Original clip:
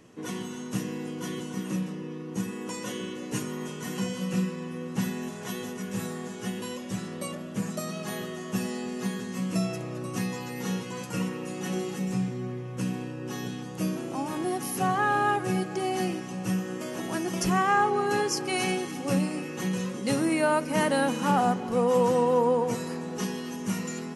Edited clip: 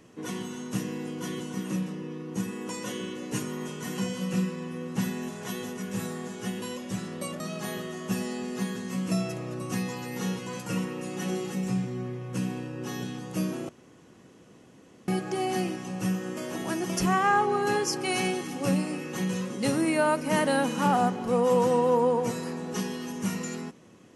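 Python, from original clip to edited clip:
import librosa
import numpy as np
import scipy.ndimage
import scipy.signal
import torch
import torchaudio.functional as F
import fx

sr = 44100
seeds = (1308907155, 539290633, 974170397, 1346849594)

y = fx.edit(x, sr, fx.cut(start_s=7.4, length_s=0.44),
    fx.room_tone_fill(start_s=14.13, length_s=1.39), tone=tone)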